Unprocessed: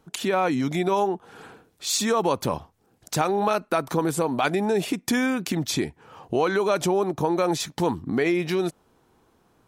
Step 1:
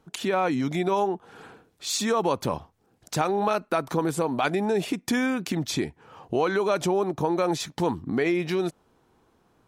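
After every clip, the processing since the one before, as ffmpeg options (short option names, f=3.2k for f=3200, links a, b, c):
-af "highshelf=f=8.1k:g=-5.5,volume=-1.5dB"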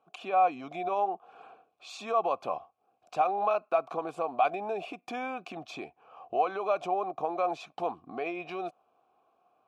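-filter_complex "[0:a]asplit=3[a][b][c];[a]bandpass=f=730:t=q:w=8,volume=0dB[d];[b]bandpass=f=1.09k:t=q:w=8,volume=-6dB[e];[c]bandpass=f=2.44k:t=q:w=8,volume=-9dB[f];[d][e][f]amix=inputs=3:normalize=0,volume=6dB"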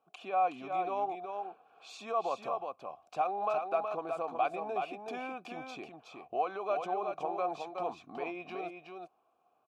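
-af "aecho=1:1:370:0.531,volume=-5dB"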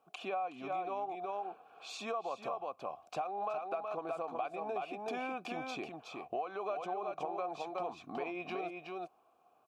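-af "acompressor=threshold=-39dB:ratio=6,volume=4dB"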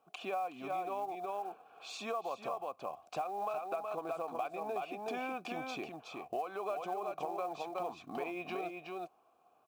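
-af "acrusher=bits=7:mode=log:mix=0:aa=0.000001"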